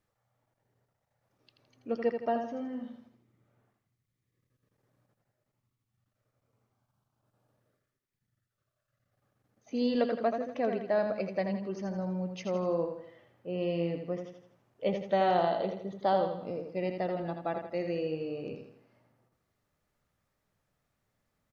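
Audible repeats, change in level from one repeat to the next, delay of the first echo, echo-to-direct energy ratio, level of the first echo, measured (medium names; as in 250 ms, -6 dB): 4, -7.0 dB, 82 ms, -5.5 dB, -6.5 dB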